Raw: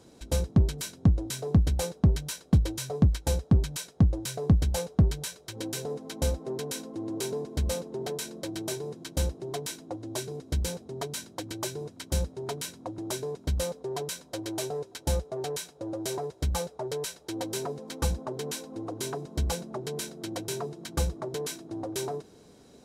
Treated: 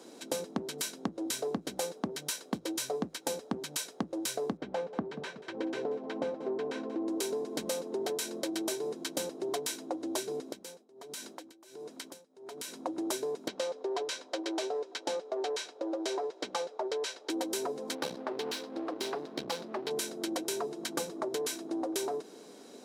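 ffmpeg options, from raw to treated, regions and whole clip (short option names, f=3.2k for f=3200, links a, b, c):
-filter_complex "[0:a]asettb=1/sr,asplit=3[a][b][c];[a]atrim=end=4.574[d];[b]atrim=start=4.57:end=7.08,asetpts=PTS-STARTPTS,afade=t=in:d=0.004:c=qsin,afade=t=out:st=2.506:d=0.004:c=qsin,lowpass=2k,aecho=1:1:185|370|555:0.141|0.0537|0.0204,atrim=end_sample=110691[e];[c]atrim=start=7.076[f];[d][e]acrossfade=d=0.004:c1=hsin:c2=qsin[g];[g][f]acrossfade=d=0.004:c1=qsin:c2=hsin,asettb=1/sr,asplit=3[h][i][j];[h]atrim=end=10.524[k];[i]atrim=start=10.52:end=12.73,asetpts=PTS-STARTPTS,afade=t=in:d=0.004:c=qsin,afade=t=out:st=2.206:d=0.004:c=qsin,lowshelf=f=130:g=-8,acompressor=threshold=-41dB:ratio=12:attack=3.2:release=140:knee=1:detection=peak,tremolo=f=1.4:d=0.91[l];[j]atrim=start=12.726[m];[k][l]acrossfade=d=0.004:c1=hsin:c2=qsin[n];[n][m]acrossfade=d=0.004:c1=qsin:c2=hsin,asettb=1/sr,asplit=3[o][p][q];[o]atrim=end=13.484[r];[p]atrim=start=13.48:end=17.3,asetpts=PTS-STARTPTS,afade=t=in:d=0.004:c=qsin,afade=t=out:st=3.816:d=0.004:c=qsin,lowpass=9.2k,acrossover=split=280 5900:gain=0.141 1 0.224[s][t][u];[s][t][u]amix=inputs=3:normalize=0[v];[q]atrim=start=17.296[w];[r][v]acrossfade=d=0.004:c1=hsin:c2=qsin[x];[x][w]acrossfade=d=0.004:c1=qsin:c2=hsin,asettb=1/sr,asplit=3[y][z][aa];[y]atrim=end=17.954[ab];[z]atrim=start=17.95:end=19.91,asetpts=PTS-STARTPTS,afade=t=in:d=0.004:c=qsin,afade=t=out:st=1.956:d=0.004:c=qsin,aeval=exprs='if(lt(val(0),0),0.251*val(0),val(0))':c=same,highshelf=f=5.7k:t=q:w=1.5:g=-8[ac];[aa]atrim=start=19.906[ad];[ab][ac]acrossfade=d=0.004:c1=hsin:c2=qsin[ae];[ae][ad]acrossfade=d=0.004:c1=qsin:c2=hsin,highpass=f=240:w=0.5412,highpass=f=240:w=1.3066,acompressor=threshold=-36dB:ratio=5,volume=5dB"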